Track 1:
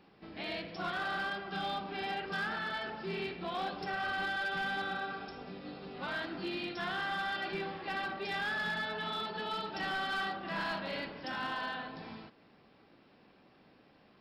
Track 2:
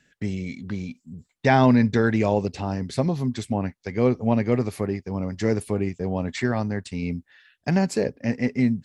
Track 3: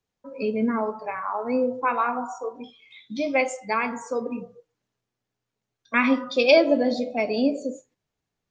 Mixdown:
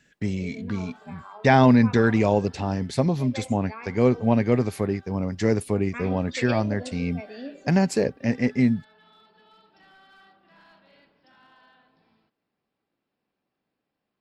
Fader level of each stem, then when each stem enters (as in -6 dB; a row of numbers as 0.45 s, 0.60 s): -19.5 dB, +1.0 dB, -15.5 dB; 0.00 s, 0.00 s, 0.00 s